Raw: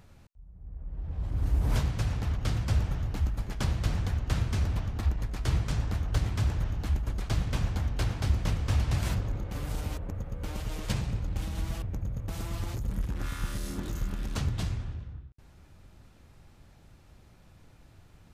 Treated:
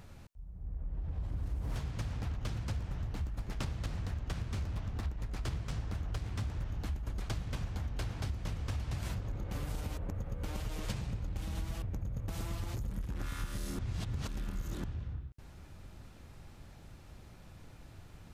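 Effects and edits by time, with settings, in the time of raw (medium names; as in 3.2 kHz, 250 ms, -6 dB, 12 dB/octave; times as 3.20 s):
1.35–6.65 s: loudspeaker Doppler distortion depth 0.6 ms
13.79–14.84 s: reverse
whole clip: compression, threshold -37 dBFS; trim +3 dB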